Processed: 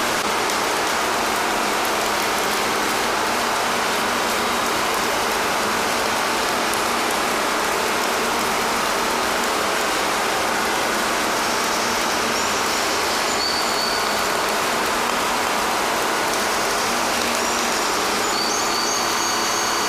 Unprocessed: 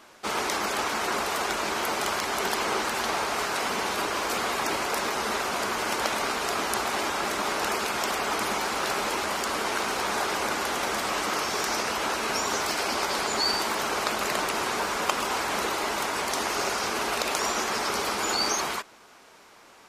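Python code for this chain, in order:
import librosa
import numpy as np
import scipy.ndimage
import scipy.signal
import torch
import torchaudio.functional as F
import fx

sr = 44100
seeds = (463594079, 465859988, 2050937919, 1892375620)

y = x + 10.0 ** (-3.5 / 20.0) * np.pad(x, (int(373 * sr / 1000.0), 0))[:len(x)]
y = fx.rev_schroeder(y, sr, rt60_s=3.1, comb_ms=26, drr_db=2.5)
y = fx.env_flatten(y, sr, amount_pct=100)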